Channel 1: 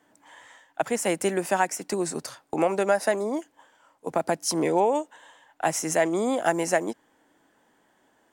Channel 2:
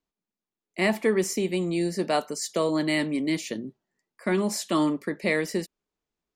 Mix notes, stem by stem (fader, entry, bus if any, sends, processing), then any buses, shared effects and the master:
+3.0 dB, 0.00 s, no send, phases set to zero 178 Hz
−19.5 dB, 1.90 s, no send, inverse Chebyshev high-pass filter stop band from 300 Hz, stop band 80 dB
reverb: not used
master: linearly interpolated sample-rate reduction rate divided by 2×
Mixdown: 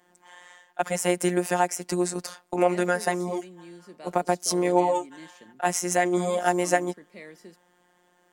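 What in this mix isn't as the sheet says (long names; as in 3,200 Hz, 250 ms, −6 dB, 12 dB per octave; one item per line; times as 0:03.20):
stem 2: missing inverse Chebyshev high-pass filter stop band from 300 Hz, stop band 80 dB
master: missing linearly interpolated sample-rate reduction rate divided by 2×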